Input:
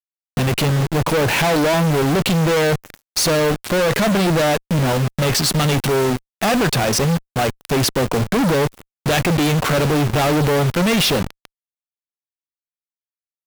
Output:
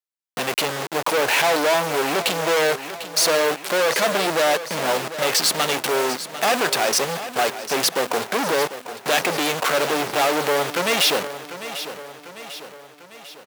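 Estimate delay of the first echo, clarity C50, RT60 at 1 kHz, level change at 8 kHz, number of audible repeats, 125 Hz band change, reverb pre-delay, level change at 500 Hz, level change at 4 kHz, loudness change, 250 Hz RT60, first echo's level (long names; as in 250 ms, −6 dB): 747 ms, no reverb audible, no reverb audible, +0.5 dB, 5, −20.0 dB, no reverb audible, −2.5 dB, +0.5 dB, −3.0 dB, no reverb audible, −12.5 dB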